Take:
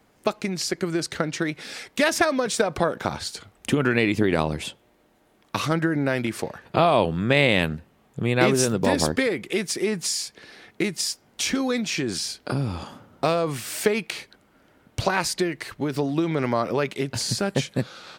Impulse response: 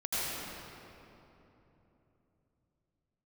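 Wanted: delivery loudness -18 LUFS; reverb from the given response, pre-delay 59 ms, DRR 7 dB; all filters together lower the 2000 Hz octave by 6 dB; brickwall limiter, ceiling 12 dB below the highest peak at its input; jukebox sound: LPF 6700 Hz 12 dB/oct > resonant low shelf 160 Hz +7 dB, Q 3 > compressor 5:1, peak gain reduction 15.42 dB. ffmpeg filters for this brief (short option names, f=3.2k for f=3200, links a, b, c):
-filter_complex "[0:a]equalizer=f=2k:t=o:g=-7.5,alimiter=limit=-17.5dB:level=0:latency=1,asplit=2[a][b];[1:a]atrim=start_sample=2205,adelay=59[c];[b][c]afir=irnorm=-1:irlink=0,volume=-15dB[d];[a][d]amix=inputs=2:normalize=0,lowpass=6.7k,lowshelf=f=160:t=q:w=3:g=7,acompressor=threshold=-31dB:ratio=5,volume=16.5dB"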